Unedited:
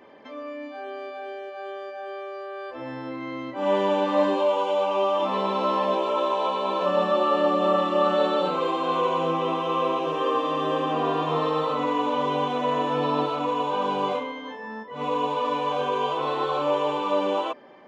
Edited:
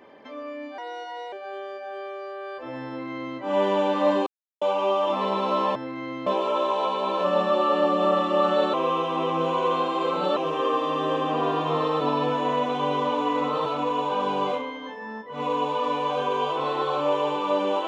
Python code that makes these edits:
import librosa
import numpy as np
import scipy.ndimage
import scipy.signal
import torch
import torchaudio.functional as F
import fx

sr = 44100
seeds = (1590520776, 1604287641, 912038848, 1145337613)

y = fx.edit(x, sr, fx.speed_span(start_s=0.78, length_s=0.67, speed=1.23),
    fx.duplicate(start_s=3.0, length_s=0.51, to_s=5.88),
    fx.silence(start_s=4.39, length_s=0.35),
    fx.reverse_span(start_s=8.35, length_s=1.63),
    fx.reverse_span(start_s=11.62, length_s=1.65), tone=tone)